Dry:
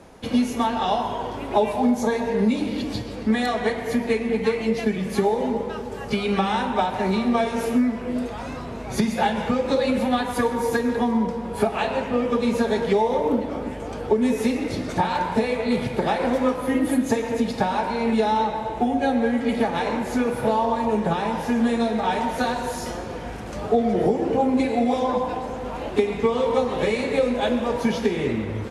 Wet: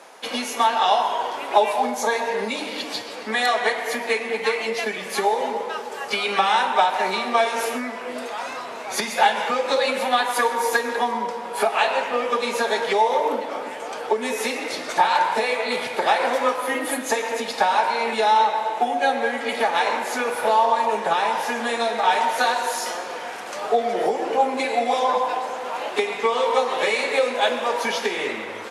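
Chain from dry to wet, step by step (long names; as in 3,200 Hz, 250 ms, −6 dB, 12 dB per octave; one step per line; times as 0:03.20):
high-pass filter 720 Hz 12 dB per octave
level +7 dB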